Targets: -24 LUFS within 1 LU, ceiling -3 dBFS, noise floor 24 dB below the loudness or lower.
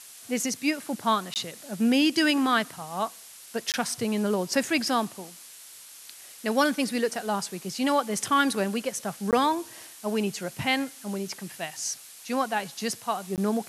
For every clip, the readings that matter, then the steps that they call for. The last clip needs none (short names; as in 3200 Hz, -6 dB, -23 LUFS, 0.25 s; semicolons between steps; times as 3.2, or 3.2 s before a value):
dropouts 4; longest dropout 18 ms; noise floor -47 dBFS; noise floor target -52 dBFS; loudness -27.5 LUFS; peak -9.0 dBFS; loudness target -24.0 LUFS
-> interpolate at 1.34/3.72/9.31/13.36, 18 ms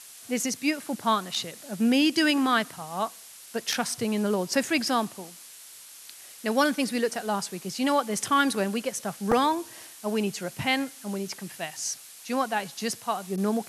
dropouts 0; noise floor -47 dBFS; noise floor target -52 dBFS
-> noise print and reduce 6 dB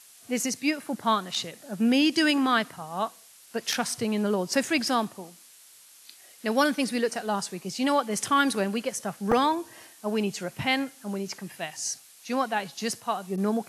noise floor -53 dBFS; loudness -27.5 LUFS; peak -9.0 dBFS; loudness target -24.0 LUFS
-> gain +3.5 dB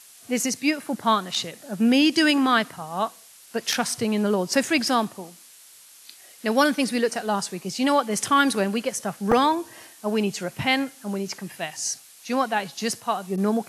loudness -24.0 LUFS; peak -5.5 dBFS; noise floor -50 dBFS